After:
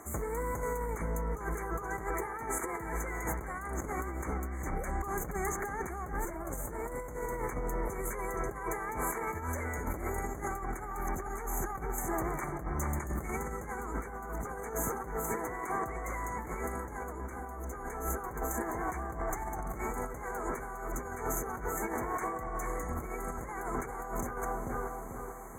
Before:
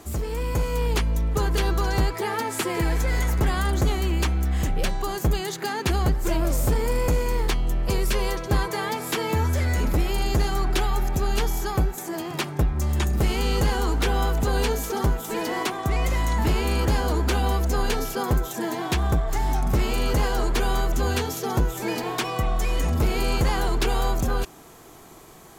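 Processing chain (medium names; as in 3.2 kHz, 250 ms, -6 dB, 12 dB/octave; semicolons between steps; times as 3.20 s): bass shelf 210 Hz -9.5 dB; FFT band-reject 2.3–6.1 kHz; peaking EQ 1.2 kHz +4.5 dB 0.71 oct; filtered feedback delay 441 ms, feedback 53%, low-pass 1.6 kHz, level -6 dB; compressor with a negative ratio -29 dBFS, ratio -0.5; trim -6 dB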